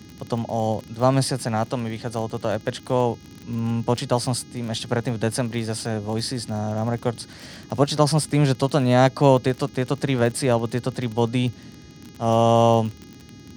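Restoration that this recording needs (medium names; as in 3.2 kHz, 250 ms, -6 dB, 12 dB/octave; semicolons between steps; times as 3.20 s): de-click; de-hum 412.8 Hz, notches 16; noise print and reduce 23 dB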